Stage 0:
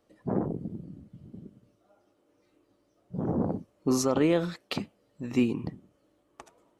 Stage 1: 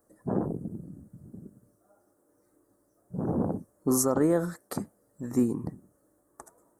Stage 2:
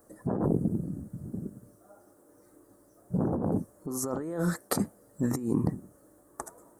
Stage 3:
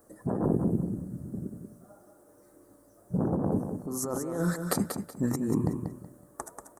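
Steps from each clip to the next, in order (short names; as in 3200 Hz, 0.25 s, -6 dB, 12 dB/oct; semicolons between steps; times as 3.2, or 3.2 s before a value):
EQ curve 1700 Hz 0 dB, 2700 Hz -27 dB, 8900 Hz +13 dB
negative-ratio compressor -33 dBFS, ratio -1; gain +4 dB
feedback echo 0.187 s, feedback 27%, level -7 dB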